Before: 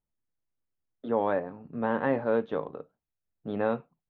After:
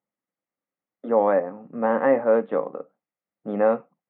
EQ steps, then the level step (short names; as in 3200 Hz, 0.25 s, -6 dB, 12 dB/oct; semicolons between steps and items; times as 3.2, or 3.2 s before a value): air absorption 73 m; speaker cabinet 190–3000 Hz, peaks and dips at 200 Hz +8 dB, 290 Hz +5 dB, 530 Hz +10 dB, 770 Hz +7 dB, 1200 Hz +8 dB, 2000 Hz +8 dB; 0.0 dB